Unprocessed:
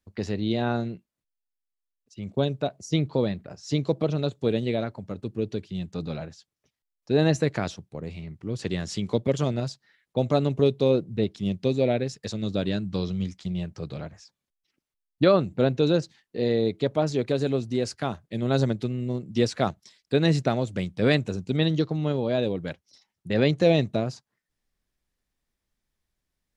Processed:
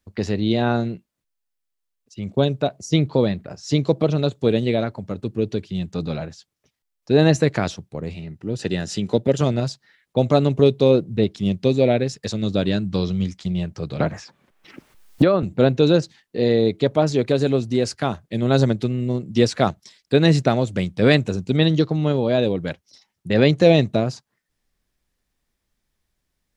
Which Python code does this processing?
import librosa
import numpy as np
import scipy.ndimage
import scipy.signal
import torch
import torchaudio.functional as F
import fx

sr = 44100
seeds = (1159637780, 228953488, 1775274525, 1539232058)

y = fx.notch_comb(x, sr, f0_hz=1100.0, at=(8.14, 9.41))
y = fx.band_squash(y, sr, depth_pct=100, at=(14.0, 15.43))
y = y * librosa.db_to_amplitude(6.0)